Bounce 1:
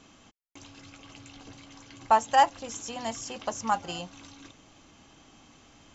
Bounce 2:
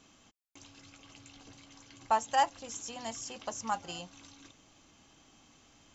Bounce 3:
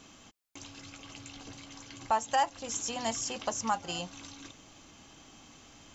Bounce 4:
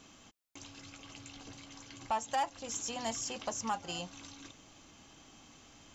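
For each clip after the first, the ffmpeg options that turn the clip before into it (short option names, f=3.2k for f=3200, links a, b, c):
-af "highshelf=f=4.1k:g=6,volume=-7dB"
-af "alimiter=level_in=0.5dB:limit=-24dB:level=0:latency=1:release=332,volume=-0.5dB,volume=7dB"
-af "asoftclip=type=tanh:threshold=-21.5dB,volume=-3dB"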